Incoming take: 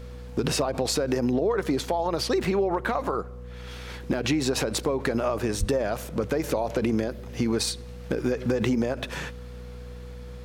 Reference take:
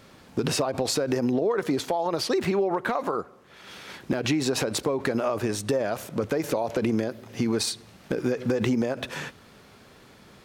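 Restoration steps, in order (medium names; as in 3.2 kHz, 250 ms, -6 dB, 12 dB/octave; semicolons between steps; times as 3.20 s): de-hum 61 Hz, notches 4; band-stop 490 Hz, Q 30; 5.59–5.71 s: high-pass 140 Hz 24 dB/octave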